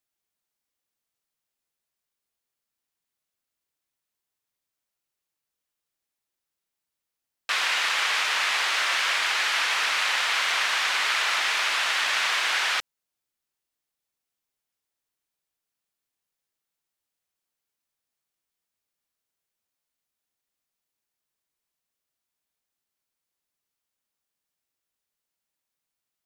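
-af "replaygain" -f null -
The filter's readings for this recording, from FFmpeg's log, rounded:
track_gain = +6.4 dB
track_peak = 0.181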